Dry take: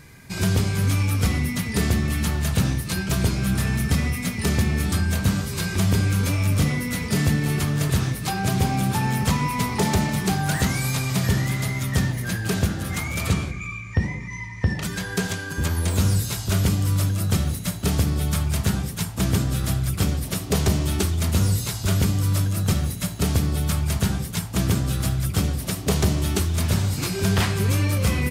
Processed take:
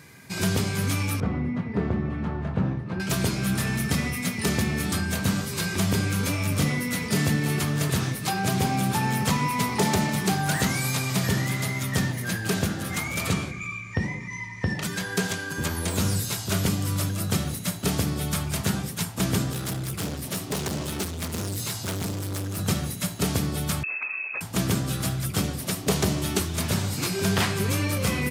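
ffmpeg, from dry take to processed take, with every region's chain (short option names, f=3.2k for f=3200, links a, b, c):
-filter_complex "[0:a]asettb=1/sr,asplit=3[a][b][c];[a]atrim=end=1.204[d];[b]atrim=start=1.2:end=3,asetpts=PTS-STARTPTS,afade=t=in:d=0.004:c=qsin,afade=t=out:st=1.796:d=0.004:c=qsin,lowpass=1.1k,asplit=2[e][f];[f]adelay=25,volume=-11dB[g];[e][g]amix=inputs=2:normalize=0,atrim=end_sample=79380[h];[c]atrim=start=2.996[i];[d][h]acrossfade=d=0.004:c1=hsin:c2=qsin[j];[j][i]acrossfade=d=0.004:c1=qsin:c2=hsin,asettb=1/sr,asplit=3[k][l][m];[k]atrim=end=19.514[n];[l]atrim=start=19.51:end=22.59,asetpts=PTS-STARTPTS,afade=t=in:d=0.004:c=qsin,afade=t=out:st=3.076:d=0.004:c=qsin,highpass=f=59:w=0.5412,highpass=f=59:w=1.3066,asoftclip=type=hard:threshold=-23.5dB[o];[m]atrim=start=22.586[p];[n][o]acrossfade=d=0.004:c1=hsin:c2=qsin[q];[q][p]acrossfade=d=0.004:c1=qsin:c2=hsin,asettb=1/sr,asplit=3[r][s][t];[r]atrim=end=23.834[u];[s]atrim=start=23.83:end=24.41,asetpts=PTS-STARTPTS,afade=t=in:d=0.004:c=qsin,afade=t=out:st=0.576:d=0.004:c=qsin,lowpass=f=2.3k:t=q:w=0.5098,lowpass=f=2.3k:t=q:w=0.6013,lowpass=f=2.3k:t=q:w=0.9,lowpass=f=2.3k:t=q:w=2.563,afreqshift=-2700,acompressor=threshold=-27dB:ratio=10:attack=3.2:release=140:knee=1:detection=peak[v];[t]atrim=start=24.406[w];[u][v]acrossfade=d=0.004:c1=hsin:c2=qsin[x];[x][w]acrossfade=d=0.004:c1=qsin:c2=hsin,highpass=110,lowshelf=f=150:g=-3.5"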